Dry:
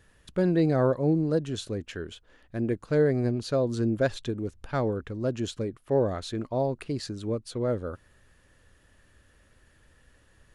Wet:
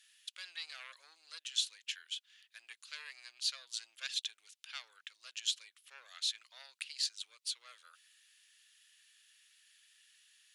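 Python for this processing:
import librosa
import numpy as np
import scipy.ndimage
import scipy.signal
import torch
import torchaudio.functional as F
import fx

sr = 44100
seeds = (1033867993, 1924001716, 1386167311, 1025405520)

y = fx.tube_stage(x, sr, drive_db=17.0, bias=0.25)
y = fx.ladder_highpass(y, sr, hz=2400.0, resonance_pct=30)
y = y * 10.0 ** (10.5 / 20.0)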